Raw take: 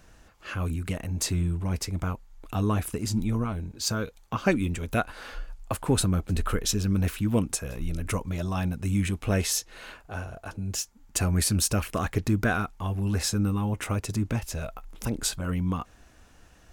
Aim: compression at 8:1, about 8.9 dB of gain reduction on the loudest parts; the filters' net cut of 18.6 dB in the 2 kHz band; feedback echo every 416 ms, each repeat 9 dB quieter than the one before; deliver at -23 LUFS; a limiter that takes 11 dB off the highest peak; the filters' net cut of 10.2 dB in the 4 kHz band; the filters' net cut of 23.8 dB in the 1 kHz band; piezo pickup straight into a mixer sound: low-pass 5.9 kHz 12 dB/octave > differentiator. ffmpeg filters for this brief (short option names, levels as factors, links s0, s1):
-af "equalizer=f=1000:t=o:g=-8,equalizer=f=2000:t=o:g=-5,equalizer=f=4000:t=o:g=-5.5,acompressor=threshold=0.0355:ratio=8,alimiter=level_in=1.78:limit=0.0631:level=0:latency=1,volume=0.562,lowpass=5900,aderivative,aecho=1:1:416|832|1248|1664:0.355|0.124|0.0435|0.0152,volume=29.9"